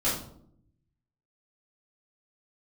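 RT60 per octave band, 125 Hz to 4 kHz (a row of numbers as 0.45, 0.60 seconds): 1.3, 1.0, 0.75, 0.55, 0.40, 0.40 seconds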